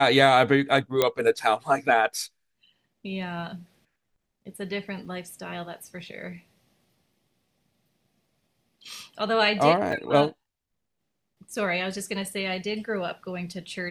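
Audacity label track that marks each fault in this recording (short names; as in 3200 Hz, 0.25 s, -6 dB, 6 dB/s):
1.020000	1.020000	pop -6 dBFS
5.050000	5.050000	gap 4.4 ms
9.920000	9.920000	gap 3.3 ms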